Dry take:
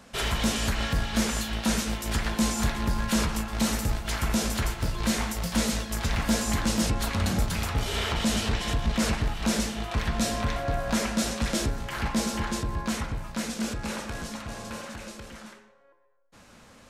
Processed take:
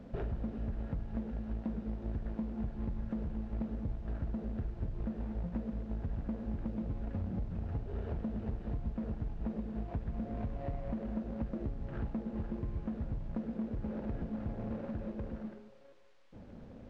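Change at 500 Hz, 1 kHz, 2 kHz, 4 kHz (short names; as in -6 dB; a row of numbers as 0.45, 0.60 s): -11.0 dB, -19.0 dB, -26.0 dB, under -35 dB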